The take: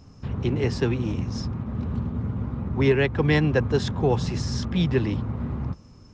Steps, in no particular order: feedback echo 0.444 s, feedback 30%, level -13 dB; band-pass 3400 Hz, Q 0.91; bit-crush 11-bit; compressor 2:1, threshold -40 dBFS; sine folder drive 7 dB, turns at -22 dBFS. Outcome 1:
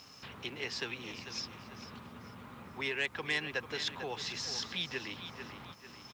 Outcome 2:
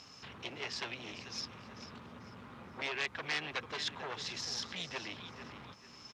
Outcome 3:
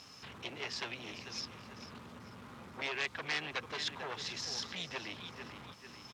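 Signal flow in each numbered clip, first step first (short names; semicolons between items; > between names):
feedback echo > compressor > band-pass > sine folder > bit-crush; compressor > feedback echo > sine folder > bit-crush > band-pass; feedback echo > compressor > bit-crush > sine folder > band-pass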